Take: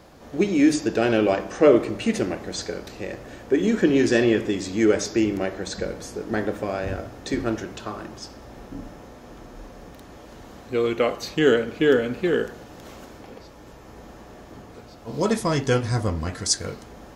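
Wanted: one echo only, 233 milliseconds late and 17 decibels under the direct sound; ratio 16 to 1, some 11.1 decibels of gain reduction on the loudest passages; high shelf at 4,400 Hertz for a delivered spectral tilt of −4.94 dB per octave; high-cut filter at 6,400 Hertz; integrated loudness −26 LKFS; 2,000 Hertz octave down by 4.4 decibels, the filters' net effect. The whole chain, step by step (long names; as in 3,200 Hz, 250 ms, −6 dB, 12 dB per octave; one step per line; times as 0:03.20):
low-pass filter 6,400 Hz
parametric band 2,000 Hz −7 dB
high-shelf EQ 4,400 Hz +6.5 dB
downward compressor 16 to 1, threshold −22 dBFS
single-tap delay 233 ms −17 dB
level +3.5 dB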